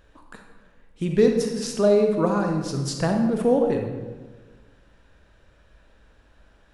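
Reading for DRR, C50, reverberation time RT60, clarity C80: 3.0 dB, 4.0 dB, 1.3 s, 6.5 dB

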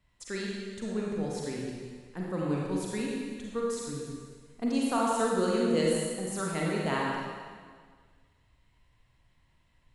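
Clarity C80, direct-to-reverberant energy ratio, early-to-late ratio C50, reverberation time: 0.5 dB, -3.5 dB, -2.0 dB, 1.7 s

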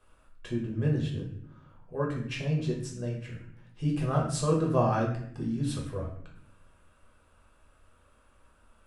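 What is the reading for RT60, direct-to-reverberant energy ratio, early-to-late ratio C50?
0.70 s, -3.0 dB, 5.0 dB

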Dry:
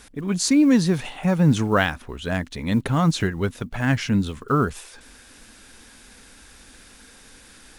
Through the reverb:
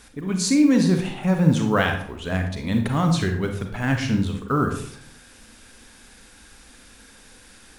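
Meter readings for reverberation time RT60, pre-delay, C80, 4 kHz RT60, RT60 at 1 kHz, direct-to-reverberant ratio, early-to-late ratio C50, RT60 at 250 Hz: 0.65 s, 32 ms, 10.0 dB, 0.40 s, 0.60 s, 4.0 dB, 6.5 dB, 0.80 s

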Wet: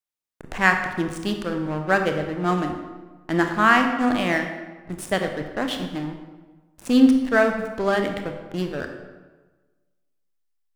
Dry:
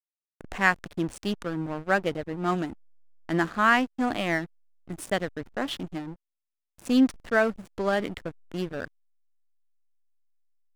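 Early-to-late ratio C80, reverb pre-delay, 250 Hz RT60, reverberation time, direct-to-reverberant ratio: 8.0 dB, 24 ms, 1.3 s, 1.3 s, 4.5 dB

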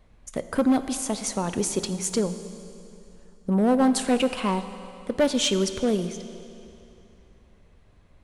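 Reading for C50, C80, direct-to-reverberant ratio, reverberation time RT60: 11.0 dB, 11.5 dB, 10.0 dB, 2.8 s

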